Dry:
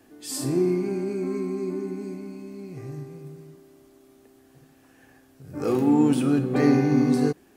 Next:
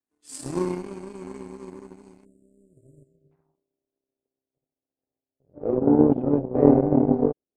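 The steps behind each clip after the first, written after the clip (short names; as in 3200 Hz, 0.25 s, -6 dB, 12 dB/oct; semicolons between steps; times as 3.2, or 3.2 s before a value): power-law curve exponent 2; spectral delete 2.25–3.32, 660–6900 Hz; low-pass sweep 8900 Hz -> 580 Hz, 3.04–3.6; gain +6 dB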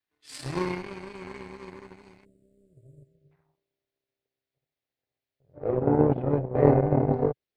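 graphic EQ 125/250/2000/4000/8000 Hz +6/-10/+9/+8/-10 dB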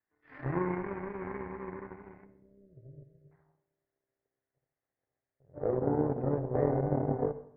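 Chebyshev low-pass 1900 Hz, order 4; compressor 3:1, threshold -31 dBFS, peak gain reduction 13.5 dB; reverb RT60 0.70 s, pre-delay 47 ms, DRR 13 dB; gain +2.5 dB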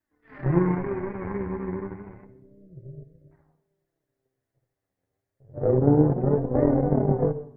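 flange 0.3 Hz, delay 3.1 ms, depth 8.1 ms, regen +23%; low shelf 390 Hz +10 dB; gain +6.5 dB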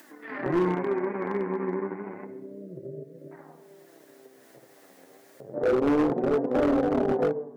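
HPF 220 Hz 24 dB/oct; in parallel at +1.5 dB: upward compressor, threshold -24 dBFS; on the sum: overloaded stage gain 14.5 dB; gain -4.5 dB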